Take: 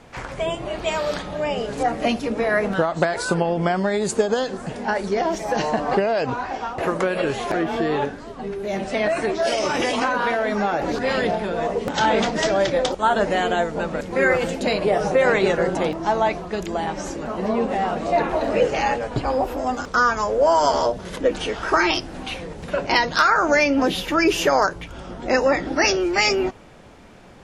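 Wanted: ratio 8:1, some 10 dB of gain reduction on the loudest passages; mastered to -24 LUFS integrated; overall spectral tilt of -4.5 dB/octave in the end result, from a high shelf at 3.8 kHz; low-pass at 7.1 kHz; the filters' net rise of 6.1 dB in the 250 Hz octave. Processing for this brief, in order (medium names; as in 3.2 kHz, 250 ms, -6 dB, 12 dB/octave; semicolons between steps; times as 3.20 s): low-pass 7.1 kHz; peaking EQ 250 Hz +8 dB; treble shelf 3.8 kHz -4 dB; compression 8:1, threshold -21 dBFS; trim +2 dB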